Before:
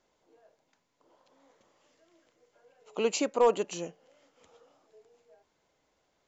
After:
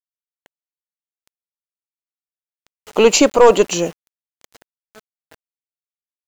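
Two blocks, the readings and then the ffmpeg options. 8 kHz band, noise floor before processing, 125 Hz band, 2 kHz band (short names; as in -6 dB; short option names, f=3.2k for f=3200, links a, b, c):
n/a, -76 dBFS, +17.5 dB, +17.5 dB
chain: -af "apsyclip=20.5dB,aeval=exprs='1.06*(cos(1*acos(clip(val(0)/1.06,-1,1)))-cos(1*PI/2))+0.075*(cos(2*acos(clip(val(0)/1.06,-1,1)))-cos(2*PI/2))+0.0188*(cos(6*acos(clip(val(0)/1.06,-1,1)))-cos(6*PI/2))+0.0119*(cos(8*acos(clip(val(0)/1.06,-1,1)))-cos(8*PI/2))':c=same,aeval=exprs='val(0)*gte(abs(val(0)),0.0266)':c=same,volume=-2.5dB"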